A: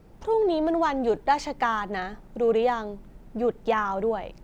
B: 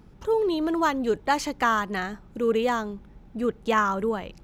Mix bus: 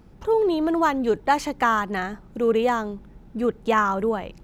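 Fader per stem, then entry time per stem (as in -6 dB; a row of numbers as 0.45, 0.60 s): -7.0, 0.0 dB; 0.00, 0.00 s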